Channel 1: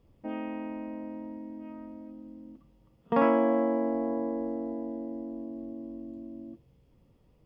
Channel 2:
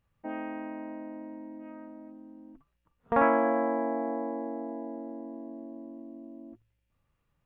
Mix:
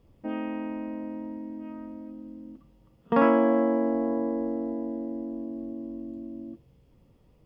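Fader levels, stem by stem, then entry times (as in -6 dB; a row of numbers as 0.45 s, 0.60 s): +3.0 dB, -14.0 dB; 0.00 s, 0.00 s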